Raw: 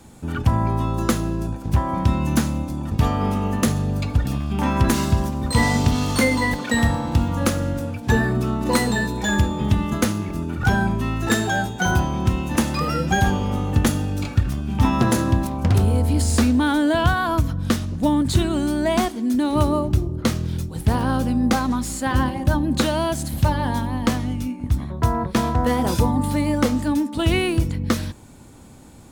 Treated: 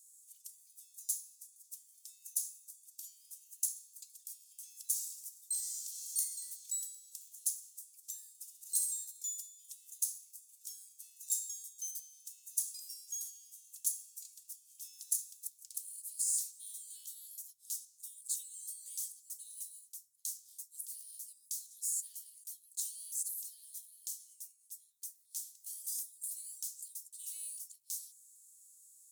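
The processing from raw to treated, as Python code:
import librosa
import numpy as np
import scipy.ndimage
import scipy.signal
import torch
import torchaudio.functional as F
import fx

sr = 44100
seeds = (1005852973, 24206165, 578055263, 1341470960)

y = scipy.signal.sosfilt(scipy.signal.cheby2(4, 80, 1300.0, 'highpass', fs=sr, output='sos'), x)
y = fx.room_flutter(y, sr, wall_m=11.5, rt60_s=0.58, at=(8.39, 9.04), fade=0.02)
y = y * librosa.db_to_amplitude(-1.5)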